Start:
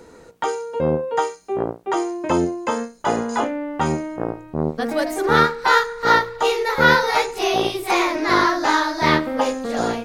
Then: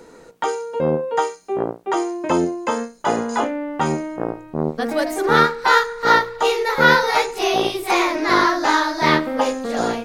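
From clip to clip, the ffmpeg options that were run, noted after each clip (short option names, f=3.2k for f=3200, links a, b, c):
-af "equalizer=f=71:w=1.5:g=-11.5,volume=1dB"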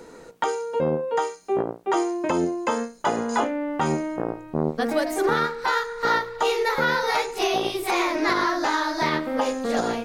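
-af "alimiter=limit=-12.5dB:level=0:latency=1:release=293"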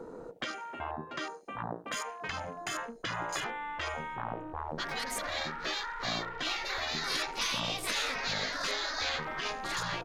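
-filter_complex "[0:a]afftfilt=real='re*lt(hypot(re,im),0.112)':imag='im*lt(hypot(re,im),0.112)':win_size=1024:overlap=0.75,asplit=2[a][b];[b]adelay=75,lowpass=f=1.2k:p=1,volume=-15dB,asplit=2[c][d];[d]adelay=75,lowpass=f=1.2k:p=1,volume=0.46,asplit=2[e][f];[f]adelay=75,lowpass=f=1.2k:p=1,volume=0.46,asplit=2[g][h];[h]adelay=75,lowpass=f=1.2k:p=1,volume=0.46[i];[a][c][e][g][i]amix=inputs=5:normalize=0,afwtdn=0.00562"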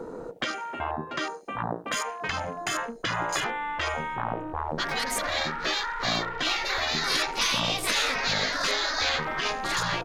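-af "asoftclip=type=hard:threshold=-21dB,volume=7dB"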